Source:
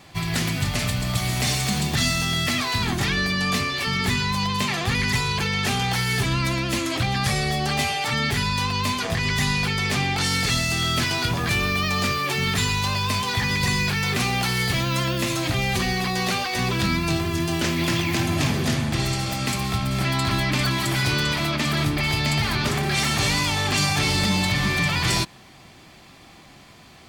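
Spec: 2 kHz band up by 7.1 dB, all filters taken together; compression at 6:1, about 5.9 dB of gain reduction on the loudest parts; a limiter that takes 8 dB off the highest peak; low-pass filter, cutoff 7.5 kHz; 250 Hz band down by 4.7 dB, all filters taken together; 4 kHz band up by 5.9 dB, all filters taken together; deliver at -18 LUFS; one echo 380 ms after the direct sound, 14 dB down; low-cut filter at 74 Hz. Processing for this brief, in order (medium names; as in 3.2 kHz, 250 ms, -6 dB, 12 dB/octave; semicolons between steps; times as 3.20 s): high-pass 74 Hz; low-pass 7.5 kHz; peaking EQ 250 Hz -7.5 dB; peaking EQ 2 kHz +7 dB; peaking EQ 4 kHz +5.5 dB; compression 6:1, threshold -21 dBFS; peak limiter -17 dBFS; delay 380 ms -14 dB; trim +6 dB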